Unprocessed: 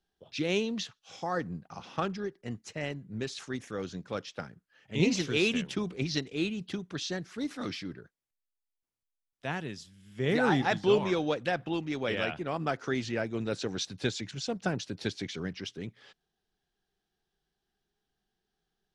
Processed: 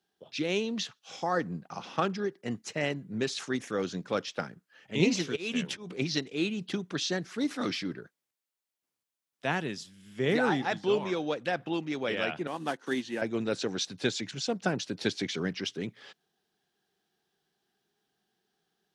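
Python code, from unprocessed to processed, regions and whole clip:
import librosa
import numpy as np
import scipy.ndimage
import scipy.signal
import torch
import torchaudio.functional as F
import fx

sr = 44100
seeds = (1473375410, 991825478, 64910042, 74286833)

y = fx.chain(x, sr, fx.auto_swell(attack_ms=286.0),
    fx.doubler(ms=12.0, db=-13.0), at=(5.18, 5.9))
y = fx.chain(y, sr, fx.block_float(bits=5),
    fx.cabinet(low_hz=230.0, low_slope=12, high_hz=9100.0, hz=(430.0, 640.0, 1300.0, 2300.0, 5000.0, 7400.0), db=(-7, -8, -9, -8, -8, -6)),
    fx.upward_expand(threshold_db=-51.0, expansion=1.5), at=(12.47, 13.22))
y = scipy.signal.sosfilt(scipy.signal.butter(2, 160.0, 'highpass', fs=sr, output='sos'), y)
y = fx.rider(y, sr, range_db=4, speed_s=0.5)
y = y * librosa.db_to_amplitude(1.5)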